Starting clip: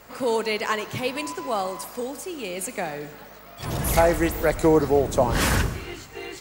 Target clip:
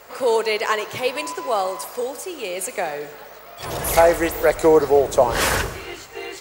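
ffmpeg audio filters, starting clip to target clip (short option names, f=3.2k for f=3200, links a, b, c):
-af "lowshelf=f=330:t=q:w=1.5:g=-8,volume=3.5dB"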